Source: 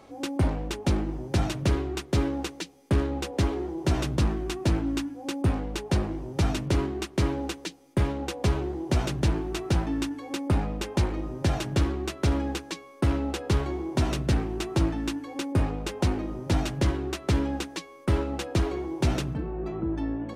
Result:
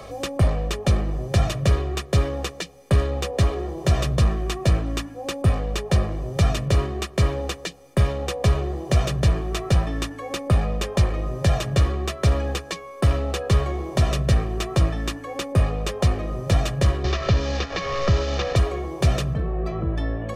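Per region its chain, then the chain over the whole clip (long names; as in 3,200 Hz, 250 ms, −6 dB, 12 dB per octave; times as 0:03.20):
0:17.04–0:18.56: linear delta modulator 32 kbit/s, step −33 dBFS + multiband upward and downward compressor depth 70%
whole clip: comb filter 1.7 ms, depth 70%; multiband upward and downward compressor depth 40%; level +3 dB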